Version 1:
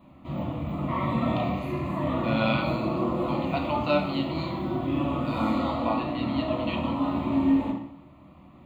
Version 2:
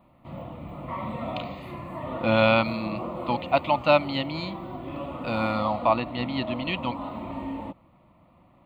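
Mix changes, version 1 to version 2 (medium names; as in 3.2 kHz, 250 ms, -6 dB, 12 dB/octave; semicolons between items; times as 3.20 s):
speech +10.0 dB; reverb: off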